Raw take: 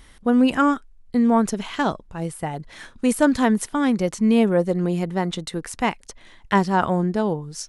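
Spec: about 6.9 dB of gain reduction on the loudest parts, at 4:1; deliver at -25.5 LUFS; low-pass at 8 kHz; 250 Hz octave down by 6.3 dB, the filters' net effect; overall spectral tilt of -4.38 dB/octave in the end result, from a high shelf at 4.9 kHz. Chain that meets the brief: low-pass 8 kHz; peaking EQ 250 Hz -7.5 dB; treble shelf 4.9 kHz +6 dB; compression 4:1, threshold -23 dBFS; trim +3.5 dB

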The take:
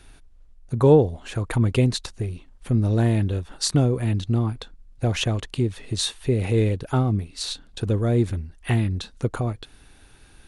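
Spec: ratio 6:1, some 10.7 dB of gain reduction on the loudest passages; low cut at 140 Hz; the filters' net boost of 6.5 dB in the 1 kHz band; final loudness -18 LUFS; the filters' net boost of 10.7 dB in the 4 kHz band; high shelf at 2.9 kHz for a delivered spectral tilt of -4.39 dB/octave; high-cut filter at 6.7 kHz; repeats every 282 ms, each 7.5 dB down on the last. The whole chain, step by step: high-pass 140 Hz; low-pass 6.7 kHz; peaking EQ 1 kHz +7.5 dB; treble shelf 2.9 kHz +8 dB; peaking EQ 4 kHz +6.5 dB; compression 6:1, threshold -20 dBFS; feedback delay 282 ms, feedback 42%, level -7.5 dB; trim +8 dB

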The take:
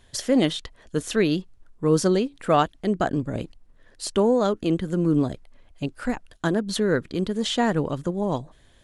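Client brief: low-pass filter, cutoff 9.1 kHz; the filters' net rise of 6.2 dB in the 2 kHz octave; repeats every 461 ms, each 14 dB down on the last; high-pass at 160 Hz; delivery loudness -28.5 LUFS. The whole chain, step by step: high-pass 160 Hz; low-pass 9.1 kHz; peaking EQ 2 kHz +8 dB; feedback delay 461 ms, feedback 20%, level -14 dB; trim -4.5 dB

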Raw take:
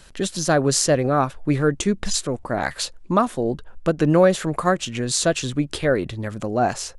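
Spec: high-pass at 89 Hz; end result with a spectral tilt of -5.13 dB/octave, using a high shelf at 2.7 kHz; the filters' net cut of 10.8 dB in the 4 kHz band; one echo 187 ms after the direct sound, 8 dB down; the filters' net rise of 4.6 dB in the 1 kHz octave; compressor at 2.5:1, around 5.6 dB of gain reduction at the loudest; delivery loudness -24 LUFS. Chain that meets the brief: high-pass 89 Hz; peaking EQ 1 kHz +8 dB; treble shelf 2.7 kHz -7 dB; peaking EQ 4 kHz -8 dB; compression 2.5:1, threshold -17 dBFS; delay 187 ms -8 dB; trim -1 dB

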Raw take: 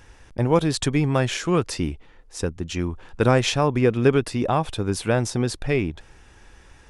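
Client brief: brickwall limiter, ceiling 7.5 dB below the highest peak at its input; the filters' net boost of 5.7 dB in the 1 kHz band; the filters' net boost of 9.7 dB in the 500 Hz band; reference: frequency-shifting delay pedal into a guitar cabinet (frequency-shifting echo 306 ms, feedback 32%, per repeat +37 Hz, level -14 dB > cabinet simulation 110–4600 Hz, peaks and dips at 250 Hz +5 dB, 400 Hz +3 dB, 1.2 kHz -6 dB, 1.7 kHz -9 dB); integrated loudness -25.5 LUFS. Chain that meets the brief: peaking EQ 500 Hz +8.5 dB; peaking EQ 1 kHz +6.5 dB; peak limiter -6.5 dBFS; frequency-shifting echo 306 ms, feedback 32%, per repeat +37 Hz, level -14 dB; cabinet simulation 110–4600 Hz, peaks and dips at 250 Hz +5 dB, 400 Hz +3 dB, 1.2 kHz -6 dB, 1.7 kHz -9 dB; trim -7 dB

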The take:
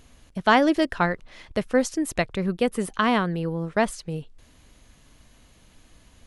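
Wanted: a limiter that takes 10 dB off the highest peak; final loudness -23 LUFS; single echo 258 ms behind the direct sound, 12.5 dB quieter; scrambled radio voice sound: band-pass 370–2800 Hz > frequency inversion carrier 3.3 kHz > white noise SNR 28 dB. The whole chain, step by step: peak limiter -15.5 dBFS; band-pass 370–2800 Hz; delay 258 ms -12.5 dB; frequency inversion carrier 3.3 kHz; white noise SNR 28 dB; trim +5 dB

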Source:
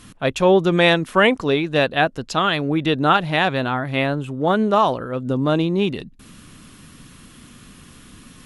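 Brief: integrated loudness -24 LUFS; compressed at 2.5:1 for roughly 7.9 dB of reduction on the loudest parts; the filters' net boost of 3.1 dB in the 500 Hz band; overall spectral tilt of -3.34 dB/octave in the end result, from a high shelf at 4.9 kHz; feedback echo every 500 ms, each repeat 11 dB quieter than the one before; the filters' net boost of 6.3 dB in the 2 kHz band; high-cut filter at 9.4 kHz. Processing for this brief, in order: low-pass 9.4 kHz; peaking EQ 500 Hz +3.5 dB; peaking EQ 2 kHz +6.5 dB; treble shelf 4.9 kHz +8 dB; compression 2.5:1, threshold -19 dBFS; feedback delay 500 ms, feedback 28%, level -11 dB; trim -3 dB

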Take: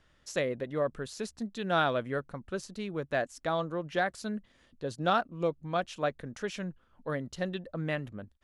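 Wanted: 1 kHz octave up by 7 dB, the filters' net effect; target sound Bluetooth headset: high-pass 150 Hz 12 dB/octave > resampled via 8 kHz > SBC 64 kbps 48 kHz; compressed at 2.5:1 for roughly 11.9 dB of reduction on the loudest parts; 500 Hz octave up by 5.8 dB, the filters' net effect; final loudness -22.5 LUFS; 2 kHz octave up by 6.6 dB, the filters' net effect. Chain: peaking EQ 500 Hz +4.5 dB; peaking EQ 1 kHz +7 dB; peaking EQ 2 kHz +5.5 dB; compression 2.5:1, threshold -34 dBFS; high-pass 150 Hz 12 dB/octave; resampled via 8 kHz; trim +14.5 dB; SBC 64 kbps 48 kHz

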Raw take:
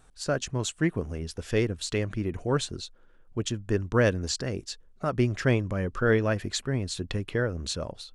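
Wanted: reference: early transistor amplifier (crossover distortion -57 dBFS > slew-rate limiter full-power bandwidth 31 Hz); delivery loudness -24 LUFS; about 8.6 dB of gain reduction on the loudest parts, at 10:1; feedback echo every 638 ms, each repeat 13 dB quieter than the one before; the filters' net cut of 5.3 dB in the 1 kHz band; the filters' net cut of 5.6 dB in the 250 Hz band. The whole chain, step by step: peaking EQ 250 Hz -7.5 dB; peaking EQ 1 kHz -7.5 dB; compression 10:1, threshold -29 dBFS; feedback delay 638 ms, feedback 22%, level -13 dB; crossover distortion -57 dBFS; slew-rate limiter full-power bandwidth 31 Hz; trim +13 dB

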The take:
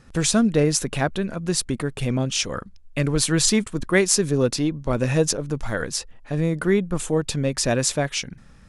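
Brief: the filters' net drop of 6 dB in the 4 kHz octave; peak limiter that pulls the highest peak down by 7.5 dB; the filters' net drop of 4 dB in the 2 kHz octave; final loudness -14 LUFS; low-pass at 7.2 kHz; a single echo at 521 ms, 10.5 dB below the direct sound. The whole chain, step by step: low-pass 7.2 kHz; peaking EQ 2 kHz -3.5 dB; peaking EQ 4 kHz -6.5 dB; peak limiter -14.5 dBFS; delay 521 ms -10.5 dB; trim +12 dB

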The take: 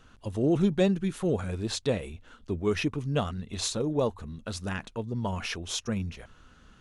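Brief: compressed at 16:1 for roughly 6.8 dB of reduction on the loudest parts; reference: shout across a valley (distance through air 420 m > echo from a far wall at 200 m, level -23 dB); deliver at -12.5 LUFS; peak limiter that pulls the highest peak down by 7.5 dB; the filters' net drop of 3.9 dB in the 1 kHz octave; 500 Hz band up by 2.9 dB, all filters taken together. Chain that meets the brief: peaking EQ 500 Hz +6 dB; peaking EQ 1 kHz -5.5 dB; compression 16:1, threshold -24 dBFS; peak limiter -24 dBFS; distance through air 420 m; echo from a far wall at 200 m, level -23 dB; trim +23 dB

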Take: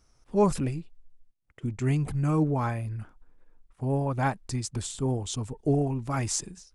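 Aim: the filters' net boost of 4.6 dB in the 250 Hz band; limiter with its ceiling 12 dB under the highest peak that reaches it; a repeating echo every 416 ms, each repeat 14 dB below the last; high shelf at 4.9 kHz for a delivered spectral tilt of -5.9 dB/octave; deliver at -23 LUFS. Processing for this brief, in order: peaking EQ 250 Hz +6 dB; treble shelf 4.9 kHz +5 dB; peak limiter -20 dBFS; feedback delay 416 ms, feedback 20%, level -14 dB; trim +6.5 dB

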